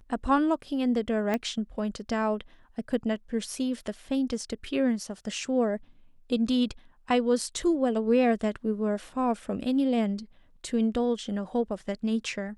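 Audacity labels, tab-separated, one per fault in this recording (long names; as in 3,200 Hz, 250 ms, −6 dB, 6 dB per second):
1.340000	1.340000	click −16 dBFS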